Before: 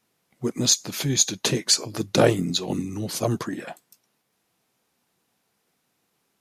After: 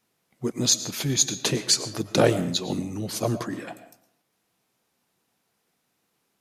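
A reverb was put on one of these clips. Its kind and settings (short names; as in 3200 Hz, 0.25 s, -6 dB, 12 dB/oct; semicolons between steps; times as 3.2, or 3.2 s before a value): digital reverb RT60 0.7 s, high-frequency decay 0.6×, pre-delay 70 ms, DRR 12.5 dB; gain -1.5 dB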